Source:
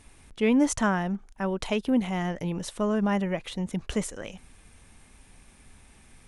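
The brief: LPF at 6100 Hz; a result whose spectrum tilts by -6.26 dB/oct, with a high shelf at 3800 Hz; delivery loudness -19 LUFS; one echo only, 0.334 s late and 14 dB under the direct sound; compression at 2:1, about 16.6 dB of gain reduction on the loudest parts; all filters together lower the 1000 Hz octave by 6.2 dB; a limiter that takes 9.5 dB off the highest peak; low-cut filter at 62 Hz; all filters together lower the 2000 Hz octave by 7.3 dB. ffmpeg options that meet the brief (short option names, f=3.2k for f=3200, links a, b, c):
-af "highpass=62,lowpass=6.1k,equalizer=f=1k:t=o:g=-6.5,equalizer=f=2k:t=o:g=-5.5,highshelf=f=3.8k:g=-6.5,acompressor=threshold=-51dB:ratio=2,alimiter=level_in=14.5dB:limit=-24dB:level=0:latency=1,volume=-14.5dB,aecho=1:1:334:0.2,volume=28dB"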